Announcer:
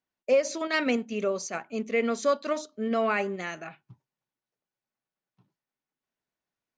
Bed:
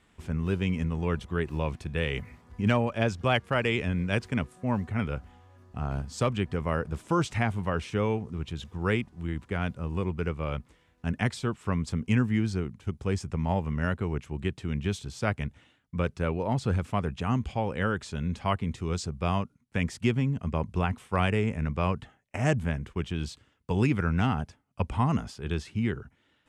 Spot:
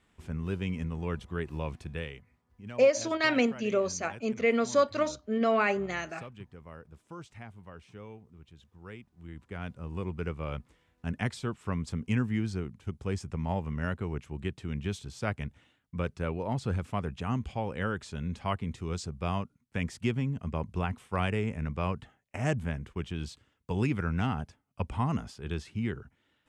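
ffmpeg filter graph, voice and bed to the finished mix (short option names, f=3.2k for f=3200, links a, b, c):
-filter_complex "[0:a]adelay=2500,volume=0.5dB[a];[1:a]volume=10dB,afade=t=out:st=1.91:d=0.28:silence=0.199526,afade=t=in:st=8.99:d=1.24:silence=0.177828[b];[a][b]amix=inputs=2:normalize=0"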